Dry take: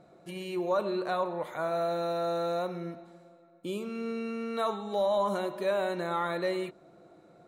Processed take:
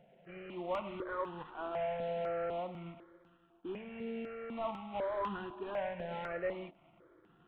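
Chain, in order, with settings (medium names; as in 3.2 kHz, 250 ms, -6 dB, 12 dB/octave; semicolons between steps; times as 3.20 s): CVSD coder 16 kbps; stepped phaser 4 Hz 320–2200 Hz; trim -4 dB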